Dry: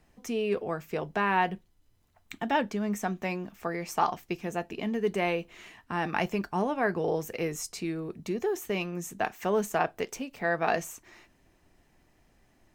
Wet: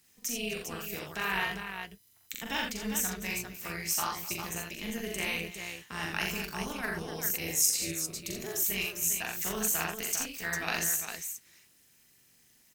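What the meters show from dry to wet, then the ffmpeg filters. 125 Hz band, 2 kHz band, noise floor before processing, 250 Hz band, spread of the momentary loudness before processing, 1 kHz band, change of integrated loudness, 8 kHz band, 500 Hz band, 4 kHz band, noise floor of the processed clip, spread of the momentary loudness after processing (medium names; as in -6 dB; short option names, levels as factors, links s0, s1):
-5.5 dB, 0.0 dB, -66 dBFS, -7.0 dB, 8 LU, -9.0 dB, -1.0 dB, +13.0 dB, -11.0 dB, +6.5 dB, -64 dBFS, 10 LU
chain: -af "highpass=140,equalizer=f=590:t=o:w=2.2:g=-13.5,crystalizer=i=4:c=0,tremolo=f=240:d=0.75,aecho=1:1:42|66|84|251|401:0.708|0.422|0.531|0.158|0.473"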